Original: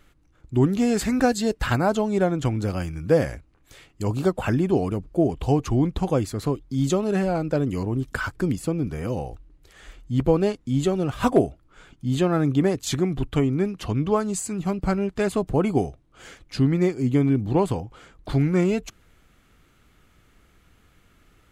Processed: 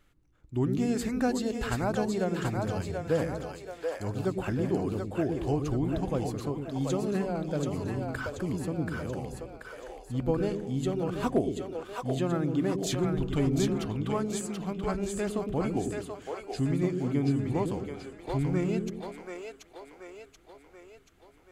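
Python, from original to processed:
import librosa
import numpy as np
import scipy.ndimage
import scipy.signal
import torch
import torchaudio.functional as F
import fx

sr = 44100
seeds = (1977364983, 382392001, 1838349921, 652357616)

p1 = fx.leveller(x, sr, passes=1, at=(12.84, 13.84))
p2 = p1 + fx.echo_split(p1, sr, split_hz=420.0, low_ms=107, high_ms=732, feedback_pct=52, wet_db=-3.5, dry=0)
y = p2 * 10.0 ** (-9.0 / 20.0)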